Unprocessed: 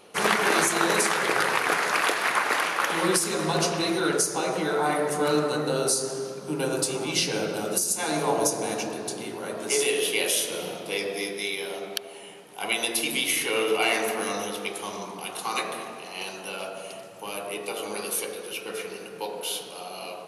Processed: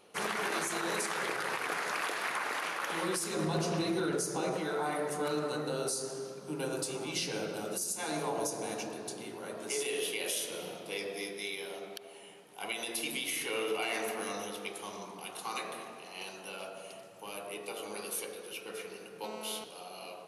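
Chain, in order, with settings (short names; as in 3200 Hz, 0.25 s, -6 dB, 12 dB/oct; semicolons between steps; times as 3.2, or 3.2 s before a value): 3.36–4.57 low shelf 410 Hz +9.5 dB; limiter -15 dBFS, peak gain reduction 7.5 dB; 19.24–19.64 GSM buzz -36 dBFS; gain -8.5 dB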